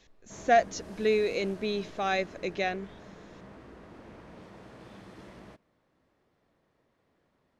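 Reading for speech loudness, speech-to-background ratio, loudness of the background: -29.0 LUFS, 19.5 dB, -48.5 LUFS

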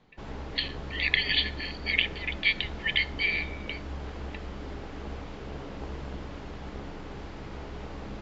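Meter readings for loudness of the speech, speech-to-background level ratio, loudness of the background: -28.0 LUFS, 12.5 dB, -40.5 LUFS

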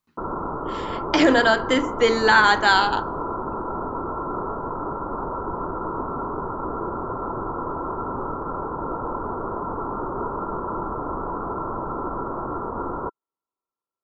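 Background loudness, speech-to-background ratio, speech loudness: -29.0 LUFS, 10.5 dB, -18.5 LUFS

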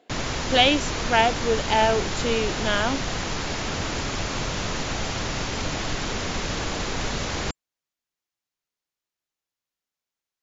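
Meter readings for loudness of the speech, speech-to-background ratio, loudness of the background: -23.0 LUFS, 5.0 dB, -28.0 LUFS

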